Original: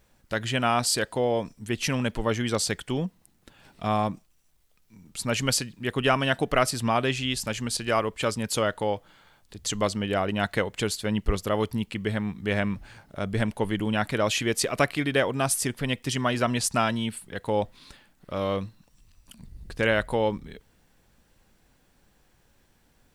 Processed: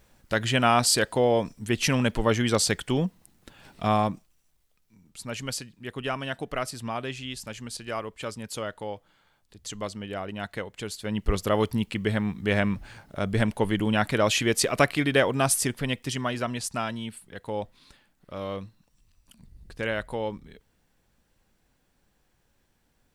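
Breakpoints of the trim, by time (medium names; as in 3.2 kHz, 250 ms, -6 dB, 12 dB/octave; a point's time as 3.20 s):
3.83 s +3 dB
5.18 s -8 dB
10.84 s -8 dB
11.41 s +2 dB
15.54 s +2 dB
16.60 s -6 dB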